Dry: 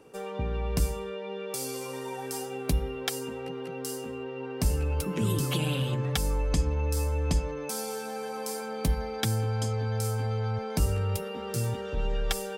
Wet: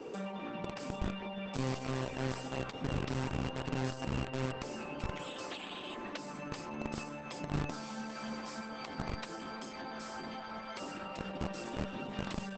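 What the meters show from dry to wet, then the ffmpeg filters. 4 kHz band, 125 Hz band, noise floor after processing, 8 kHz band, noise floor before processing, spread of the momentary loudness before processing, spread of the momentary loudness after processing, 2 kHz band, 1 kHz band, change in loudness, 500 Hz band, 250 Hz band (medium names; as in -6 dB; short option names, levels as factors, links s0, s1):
-7.5 dB, -11.5 dB, -45 dBFS, -15.0 dB, -37 dBFS, 8 LU, 6 LU, -3.5 dB, -4.0 dB, -9.0 dB, -8.5 dB, -4.0 dB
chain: -filter_complex "[0:a]acrossover=split=3600[s0][s1];[s1]acompressor=threshold=0.00708:ratio=4:attack=1:release=60[s2];[s0][s2]amix=inputs=2:normalize=0,highpass=41,afftfilt=real='re*lt(hypot(re,im),0.0631)':imag='im*lt(hypot(re,im),0.0631)':win_size=1024:overlap=0.75,lowpass=7000,lowshelf=f=220:g=12,bandreject=f=60:t=h:w=6,bandreject=f=120:t=h:w=6,bandreject=f=180:t=h:w=6,bandreject=f=240:t=h:w=6,acrossover=split=210[s3][s4];[s4]acompressor=threshold=0.00316:ratio=5[s5];[s3][s5]amix=inputs=2:normalize=0,acrossover=split=190|560|3500[s6][s7][s8][s9];[s6]acrusher=bits=4:dc=4:mix=0:aa=0.000001[s10];[s7]aecho=1:1:63|126|189|252|315|378|441|504:0.501|0.301|0.18|0.108|0.065|0.039|0.0234|0.014[s11];[s10][s11][s8][s9]amix=inputs=4:normalize=0,volume=2.82" -ar 48000 -c:a libopus -b:a 12k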